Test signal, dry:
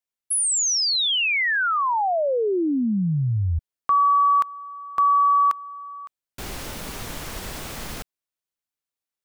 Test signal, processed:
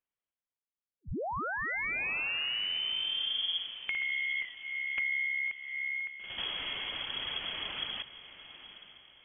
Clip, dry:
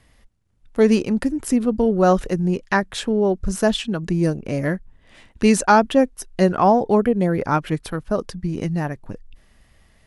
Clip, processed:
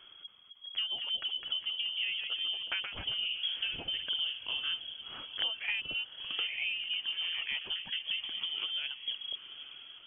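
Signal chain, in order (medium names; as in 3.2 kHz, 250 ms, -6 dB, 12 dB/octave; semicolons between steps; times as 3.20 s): reverb removal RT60 0.56 s; dynamic bell 1.6 kHz, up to -6 dB, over -39 dBFS, Q 2; compression 6:1, threshold -35 dBFS; echo that smears into a reverb 864 ms, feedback 42%, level -13.5 dB; ever faster or slower copies 276 ms, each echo +1 st, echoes 3, each echo -6 dB; frequency inversion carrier 3.3 kHz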